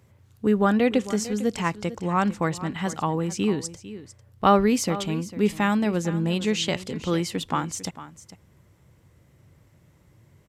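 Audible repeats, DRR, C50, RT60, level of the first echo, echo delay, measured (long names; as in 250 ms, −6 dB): 1, no reverb audible, no reverb audible, no reverb audible, −15.0 dB, 450 ms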